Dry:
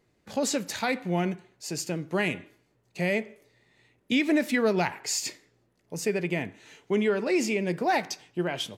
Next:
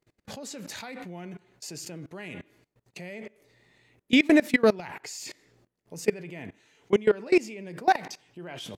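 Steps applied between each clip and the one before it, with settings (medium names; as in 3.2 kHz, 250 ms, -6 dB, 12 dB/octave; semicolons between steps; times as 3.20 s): level held to a coarse grid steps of 23 dB; trim +6.5 dB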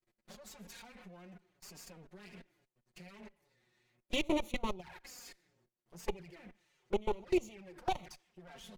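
comb filter that takes the minimum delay 5.5 ms; touch-sensitive flanger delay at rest 8.7 ms, full sweep at -24 dBFS; trim -8 dB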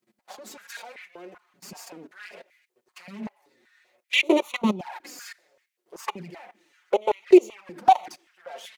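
step-sequenced high-pass 5.2 Hz 210–2100 Hz; trim +8.5 dB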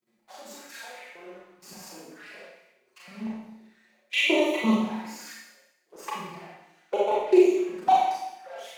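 Schroeder reverb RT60 0.9 s, combs from 28 ms, DRR -5.5 dB; trim -7 dB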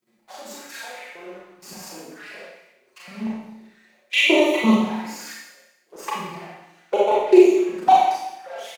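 feedback delay 147 ms, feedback 48%, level -22 dB; trim +6 dB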